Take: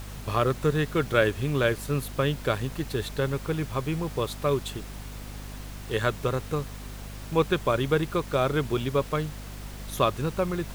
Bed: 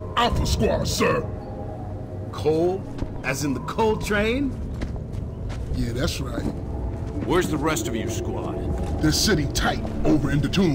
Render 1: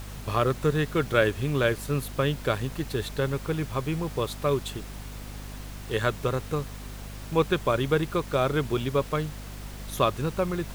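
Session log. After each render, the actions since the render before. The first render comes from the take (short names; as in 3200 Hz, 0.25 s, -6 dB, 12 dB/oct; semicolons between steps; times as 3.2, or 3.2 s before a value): nothing audible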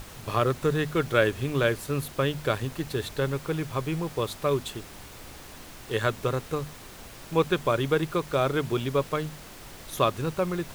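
notches 50/100/150/200/250 Hz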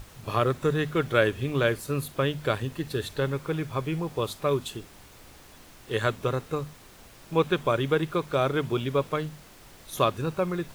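noise print and reduce 6 dB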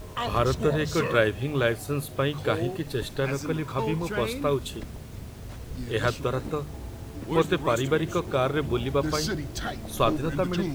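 add bed -10 dB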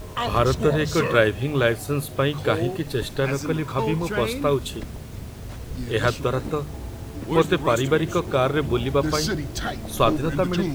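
gain +4 dB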